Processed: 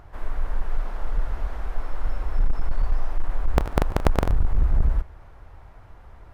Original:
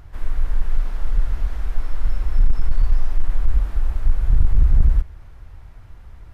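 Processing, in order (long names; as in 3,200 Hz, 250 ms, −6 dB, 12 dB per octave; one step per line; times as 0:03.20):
0:03.56–0:04.31: sub-harmonics by changed cycles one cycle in 3, inverted
parametric band 730 Hz +11 dB 2.7 octaves
level −6 dB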